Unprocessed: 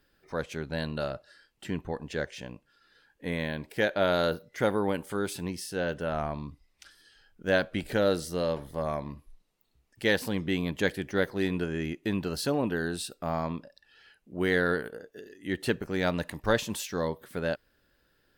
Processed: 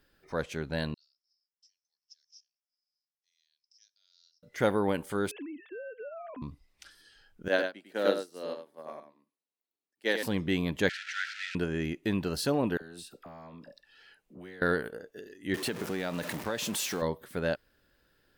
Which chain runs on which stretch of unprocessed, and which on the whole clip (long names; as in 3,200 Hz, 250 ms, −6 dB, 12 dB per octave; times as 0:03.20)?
0:00.94–0:04.43: noise gate −55 dBFS, range −9 dB + flat-topped band-pass 5,400 Hz, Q 7.7
0:05.31–0:06.42: three sine waves on the formant tracks + downward compressor 5 to 1, threshold −43 dBFS + low-shelf EQ 370 Hz +8 dB
0:07.48–0:10.23: high-pass filter 240 Hz 24 dB per octave + single-tap delay 100 ms −3 dB + expander for the loud parts 2.5 to 1, over −35 dBFS
0:10.89–0:11.55: linear delta modulator 64 kbit/s, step −25.5 dBFS + linear-phase brick-wall high-pass 1,300 Hz + high-frequency loss of the air 170 metres
0:12.77–0:14.62: parametric band 66 Hz −8 dB 1.5 octaves + downward compressor 16 to 1, threshold −42 dBFS + all-pass dispersion lows, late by 41 ms, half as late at 880 Hz
0:15.54–0:17.02: converter with a step at zero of −33.5 dBFS + high-pass filter 160 Hz + downward compressor, threshold −28 dBFS
whole clip: no processing